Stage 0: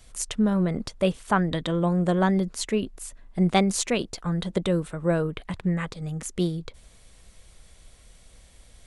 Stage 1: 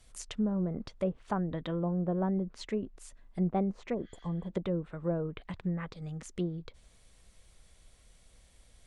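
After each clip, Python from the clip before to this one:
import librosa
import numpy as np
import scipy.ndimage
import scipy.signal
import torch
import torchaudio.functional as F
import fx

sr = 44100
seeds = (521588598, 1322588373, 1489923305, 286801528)

y = fx.spec_repair(x, sr, seeds[0], start_s=3.96, length_s=0.48, low_hz=1200.0, high_hz=6900.0, source='after')
y = fx.env_lowpass_down(y, sr, base_hz=810.0, full_db=-19.5)
y = F.gain(torch.from_numpy(y), -8.0).numpy()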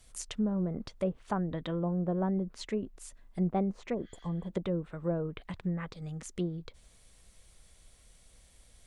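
y = fx.high_shelf(x, sr, hz=6700.0, db=6.0)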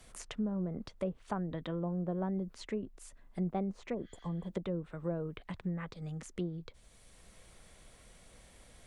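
y = fx.band_squash(x, sr, depth_pct=40)
y = F.gain(torch.from_numpy(y), -4.0).numpy()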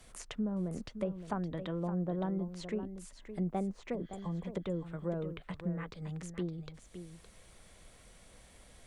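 y = x + 10.0 ** (-10.5 / 20.0) * np.pad(x, (int(565 * sr / 1000.0), 0))[:len(x)]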